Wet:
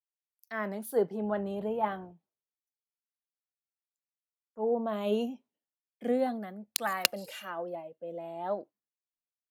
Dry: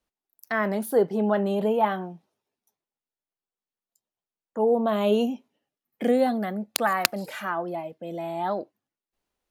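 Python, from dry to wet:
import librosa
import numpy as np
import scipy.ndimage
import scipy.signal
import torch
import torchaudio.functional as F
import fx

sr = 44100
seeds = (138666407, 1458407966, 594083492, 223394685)

y = fx.dmg_noise_band(x, sr, seeds[0], low_hz=51.0, high_hz=620.0, level_db=-49.0, at=(1.18, 2.11), fade=0.02)
y = fx.small_body(y, sr, hz=(520.0, 2800.0), ring_ms=25, db=fx.line((7.03, 9.0), (8.54, 12.0)), at=(7.03, 8.54), fade=0.02)
y = fx.band_widen(y, sr, depth_pct=70)
y = F.gain(torch.from_numpy(y), -9.0).numpy()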